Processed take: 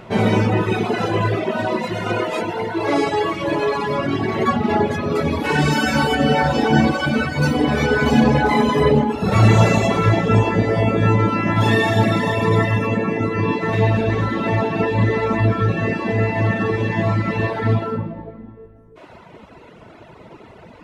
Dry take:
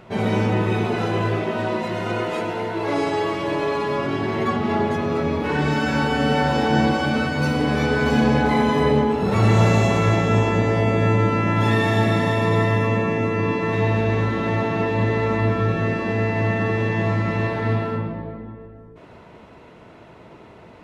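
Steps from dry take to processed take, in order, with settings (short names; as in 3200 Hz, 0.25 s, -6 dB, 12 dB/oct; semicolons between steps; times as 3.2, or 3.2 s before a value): reverb removal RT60 1.7 s; 5.15–6.15 high shelf 6100 Hz +12 dB; gain +6 dB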